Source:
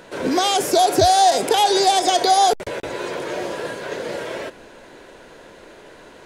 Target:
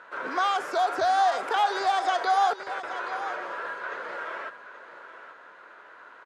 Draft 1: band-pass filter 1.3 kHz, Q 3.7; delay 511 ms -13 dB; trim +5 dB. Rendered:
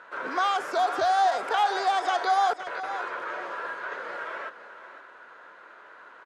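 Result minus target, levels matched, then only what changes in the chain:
echo 316 ms early
change: delay 827 ms -13 dB

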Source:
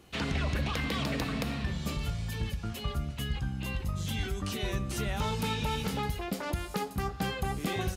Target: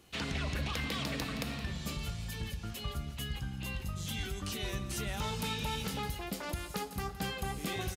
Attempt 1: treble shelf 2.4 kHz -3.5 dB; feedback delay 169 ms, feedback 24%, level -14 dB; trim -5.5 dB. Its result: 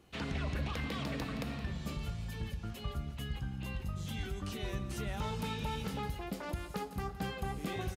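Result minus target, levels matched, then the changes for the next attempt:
4 kHz band -4.5 dB
change: treble shelf 2.4 kHz +6 dB

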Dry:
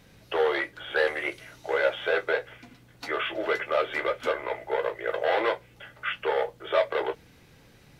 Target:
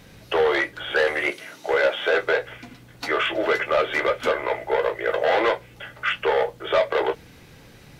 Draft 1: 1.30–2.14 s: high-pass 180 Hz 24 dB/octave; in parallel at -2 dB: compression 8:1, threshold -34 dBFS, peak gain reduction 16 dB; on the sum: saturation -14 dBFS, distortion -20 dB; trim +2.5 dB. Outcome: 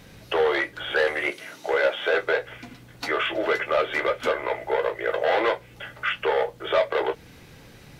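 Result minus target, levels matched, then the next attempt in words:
compression: peak gain reduction +10 dB
1.30–2.14 s: high-pass 180 Hz 24 dB/octave; in parallel at -2 dB: compression 8:1, threshold -22.5 dBFS, peak gain reduction 6 dB; on the sum: saturation -14 dBFS, distortion -17 dB; trim +2.5 dB

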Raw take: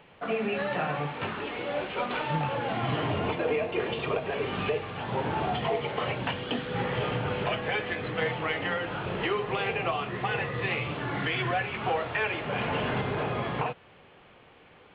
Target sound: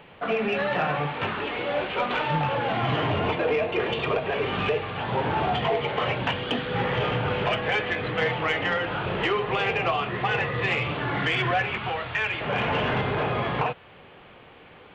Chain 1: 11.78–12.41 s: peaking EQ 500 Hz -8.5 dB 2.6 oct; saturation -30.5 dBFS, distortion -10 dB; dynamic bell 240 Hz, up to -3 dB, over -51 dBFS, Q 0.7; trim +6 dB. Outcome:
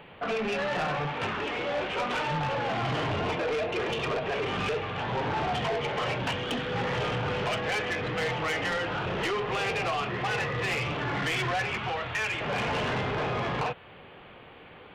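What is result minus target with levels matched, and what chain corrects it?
saturation: distortion +14 dB
11.78–12.41 s: peaking EQ 500 Hz -8.5 dB 2.6 oct; saturation -19 dBFS, distortion -24 dB; dynamic bell 240 Hz, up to -3 dB, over -51 dBFS, Q 0.7; trim +6 dB

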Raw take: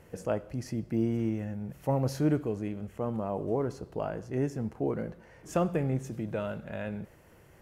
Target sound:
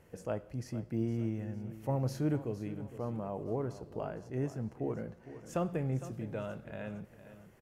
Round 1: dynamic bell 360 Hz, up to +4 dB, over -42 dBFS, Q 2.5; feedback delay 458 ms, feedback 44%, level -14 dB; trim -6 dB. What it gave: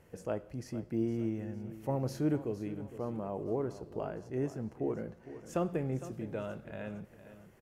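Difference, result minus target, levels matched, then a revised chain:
125 Hz band -3.0 dB
dynamic bell 120 Hz, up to +4 dB, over -42 dBFS, Q 2.5; feedback delay 458 ms, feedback 44%, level -14 dB; trim -6 dB

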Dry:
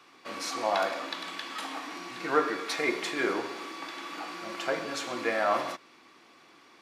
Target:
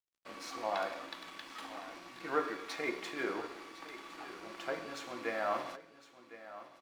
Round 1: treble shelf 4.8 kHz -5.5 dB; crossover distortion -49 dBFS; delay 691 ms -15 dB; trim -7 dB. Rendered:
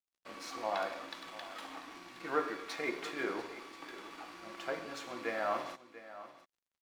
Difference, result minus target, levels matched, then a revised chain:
echo 368 ms early
treble shelf 4.8 kHz -5.5 dB; crossover distortion -49 dBFS; delay 1059 ms -15 dB; trim -7 dB

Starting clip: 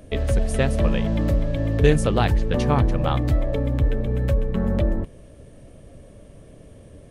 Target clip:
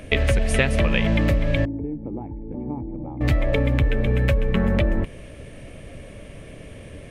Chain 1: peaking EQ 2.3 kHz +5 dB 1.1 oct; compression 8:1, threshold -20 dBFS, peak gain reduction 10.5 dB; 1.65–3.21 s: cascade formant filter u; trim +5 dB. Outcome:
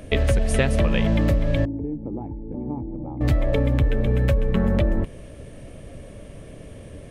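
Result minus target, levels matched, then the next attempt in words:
2 kHz band -5.0 dB
peaking EQ 2.3 kHz +12.5 dB 1.1 oct; compression 8:1, threshold -20 dBFS, peak gain reduction 11.5 dB; 1.65–3.21 s: cascade formant filter u; trim +5 dB

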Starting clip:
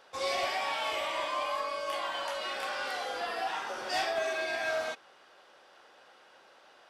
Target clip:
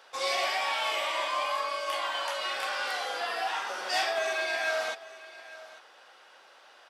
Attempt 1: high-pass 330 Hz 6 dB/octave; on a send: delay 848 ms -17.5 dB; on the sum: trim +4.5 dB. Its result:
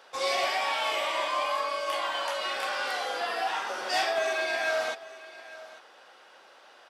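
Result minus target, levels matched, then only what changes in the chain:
250 Hz band +3.5 dB
change: high-pass 730 Hz 6 dB/octave

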